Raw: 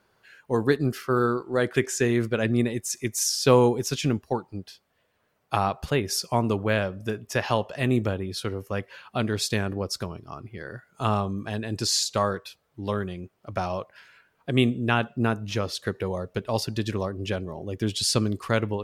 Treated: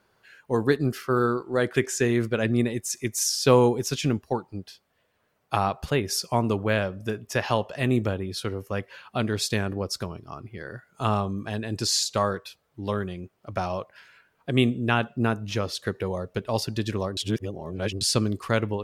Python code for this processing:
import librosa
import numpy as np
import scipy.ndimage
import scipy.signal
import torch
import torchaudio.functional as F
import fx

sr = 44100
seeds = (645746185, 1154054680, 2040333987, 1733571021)

y = fx.edit(x, sr, fx.reverse_span(start_s=17.17, length_s=0.84), tone=tone)